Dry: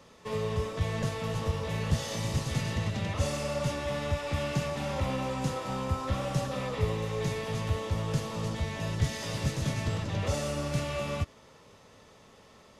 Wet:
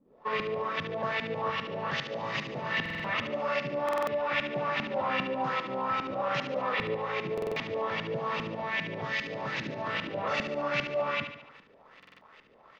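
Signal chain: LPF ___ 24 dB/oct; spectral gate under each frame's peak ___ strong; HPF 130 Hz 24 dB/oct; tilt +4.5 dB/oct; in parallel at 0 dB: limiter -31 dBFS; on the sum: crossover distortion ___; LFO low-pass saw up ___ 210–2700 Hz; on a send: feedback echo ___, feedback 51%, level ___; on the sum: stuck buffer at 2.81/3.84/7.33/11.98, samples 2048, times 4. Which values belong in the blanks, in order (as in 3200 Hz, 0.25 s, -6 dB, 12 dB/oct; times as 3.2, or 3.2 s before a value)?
5500 Hz, -55 dB, -50.5 dBFS, 2.5 Hz, 72 ms, -9 dB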